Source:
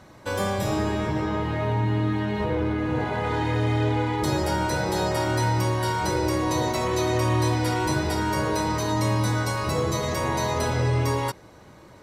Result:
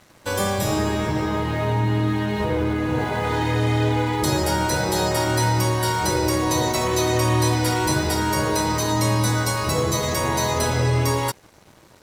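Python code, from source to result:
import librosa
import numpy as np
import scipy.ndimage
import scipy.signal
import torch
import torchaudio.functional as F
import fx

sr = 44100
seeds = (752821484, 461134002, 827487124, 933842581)

y = np.sign(x) * np.maximum(np.abs(x) - 10.0 ** (-50.5 / 20.0), 0.0)
y = fx.high_shelf(y, sr, hz=5000.0, db=8.5)
y = F.gain(torch.from_numpy(y), 3.0).numpy()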